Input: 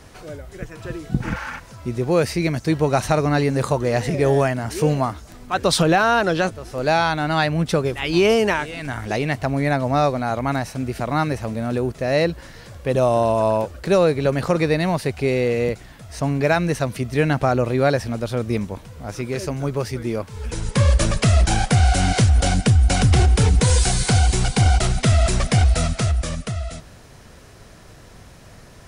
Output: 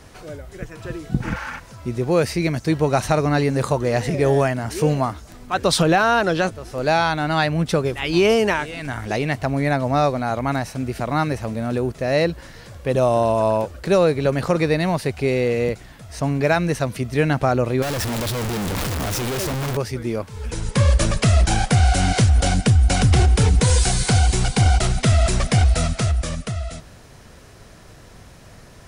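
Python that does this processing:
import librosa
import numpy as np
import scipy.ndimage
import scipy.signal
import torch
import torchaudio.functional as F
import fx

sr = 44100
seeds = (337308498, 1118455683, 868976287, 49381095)

y = fx.clip_1bit(x, sr, at=(17.82, 19.77))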